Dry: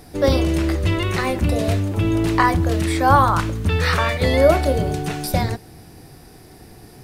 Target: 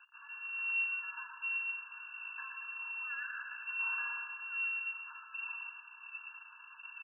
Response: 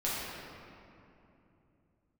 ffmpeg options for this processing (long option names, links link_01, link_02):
-filter_complex "[0:a]highpass=41,bandreject=frequency=50:width_type=h:width=6,bandreject=frequency=100:width_type=h:width=6,bandreject=frequency=150:width_type=h:width=6,bandreject=frequency=200:width_type=h:width=6,bandreject=frequency=250:width_type=h:width=6,bandreject=frequency=300:width_type=h:width=6,areverse,acompressor=threshold=-28dB:ratio=4,areverse,alimiter=level_in=3.5dB:limit=-24dB:level=0:latency=1:release=440,volume=-3.5dB,acrossover=split=370|1500[link_01][link_02][link_03];[link_01]aphaser=in_gain=1:out_gain=1:delay=4.2:decay=0.61:speed=1.3:type=triangular[link_04];[link_02]acontrast=71[link_05];[link_04][link_05][link_03]amix=inputs=3:normalize=0,asplit=2[link_06][link_07];[link_07]adelay=15,volume=-7dB[link_08];[link_06][link_08]amix=inputs=2:normalize=0,aecho=1:1:120|228|325.2|412.7|491.4:0.631|0.398|0.251|0.158|0.1,acrusher=bits=5:mix=0:aa=0.5,lowpass=frequency=2400:width_type=q:width=0.5098,lowpass=frequency=2400:width_type=q:width=0.6013,lowpass=frequency=2400:width_type=q:width=0.9,lowpass=frequency=2400:width_type=q:width=2.563,afreqshift=-2800,afftfilt=real='re*eq(mod(floor(b*sr/1024/880),2),1)':imag='im*eq(mod(floor(b*sr/1024/880),2),1)':win_size=1024:overlap=0.75,volume=-8.5dB"